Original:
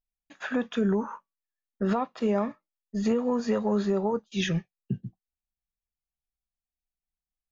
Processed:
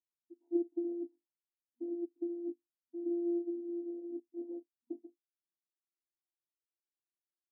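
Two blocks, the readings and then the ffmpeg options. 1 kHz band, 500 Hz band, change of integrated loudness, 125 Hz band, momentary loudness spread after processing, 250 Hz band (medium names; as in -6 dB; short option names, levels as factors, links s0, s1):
under -30 dB, -11.0 dB, -11.0 dB, under -40 dB, 13 LU, -9.5 dB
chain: -af "asuperstop=centerf=690:order=20:qfactor=0.59,afftfilt=real='hypot(re,im)*cos(PI*b)':imag='0':win_size=512:overlap=0.75,afftfilt=real='re*between(b*sr/4096,240,970)':imag='im*between(b*sr/4096,240,970)':win_size=4096:overlap=0.75,volume=1.5"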